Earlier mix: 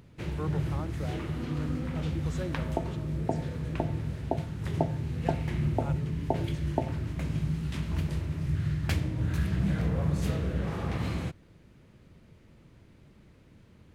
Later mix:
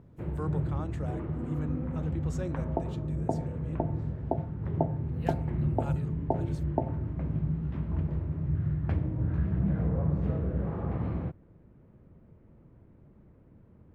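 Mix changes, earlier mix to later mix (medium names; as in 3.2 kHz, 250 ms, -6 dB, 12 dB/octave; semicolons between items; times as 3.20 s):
speech: remove low-pass 8.8 kHz 24 dB/octave; first sound: add low-pass 1 kHz 12 dB/octave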